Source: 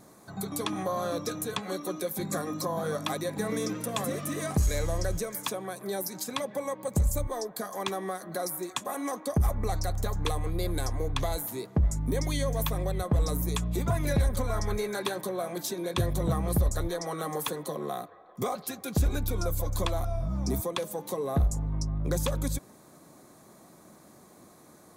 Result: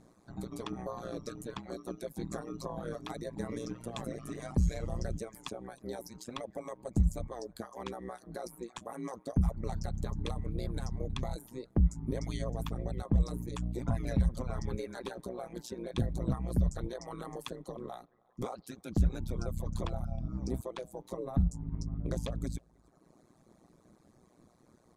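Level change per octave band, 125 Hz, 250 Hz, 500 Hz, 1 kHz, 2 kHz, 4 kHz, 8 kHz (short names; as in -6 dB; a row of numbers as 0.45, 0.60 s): -4.0, -4.0, -8.5, -10.0, -11.5, -11.5, -14.5 dB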